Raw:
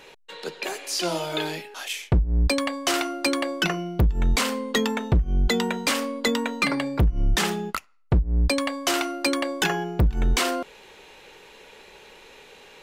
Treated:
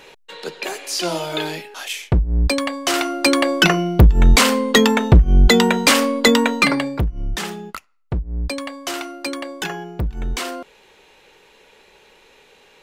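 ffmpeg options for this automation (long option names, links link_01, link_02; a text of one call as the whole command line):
ffmpeg -i in.wav -af "volume=10dB,afade=type=in:start_time=2.88:duration=0.69:silence=0.473151,afade=type=out:start_time=6.44:duration=0.66:silence=0.223872" out.wav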